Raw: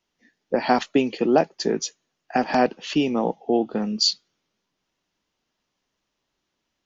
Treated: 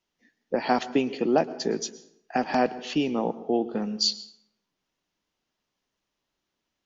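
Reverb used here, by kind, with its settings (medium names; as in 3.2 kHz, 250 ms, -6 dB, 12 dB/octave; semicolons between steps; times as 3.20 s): plate-style reverb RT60 0.72 s, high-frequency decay 0.65×, pre-delay 100 ms, DRR 16 dB; trim -4 dB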